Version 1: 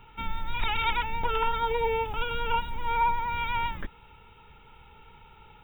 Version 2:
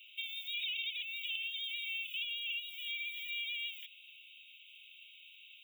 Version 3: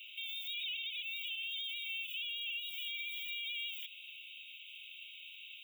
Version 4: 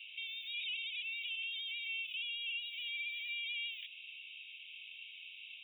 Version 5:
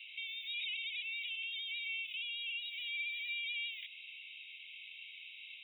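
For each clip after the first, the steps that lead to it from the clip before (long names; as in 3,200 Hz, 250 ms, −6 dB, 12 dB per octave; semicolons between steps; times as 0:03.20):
Butterworth high-pass 2,500 Hz 72 dB per octave; downward compressor 6 to 1, threshold −44 dBFS, peak gain reduction 12.5 dB; level +7.5 dB
dynamic equaliser 1,800 Hz, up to −8 dB, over −58 dBFS, Q 1.9; brickwall limiter −38.5 dBFS, peak gain reduction 11 dB; level +5.5 dB
high-frequency loss of the air 390 metres; level +7 dB
hollow resonant body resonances 2,100/3,900 Hz, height 14 dB, ringing for 20 ms; level −1.5 dB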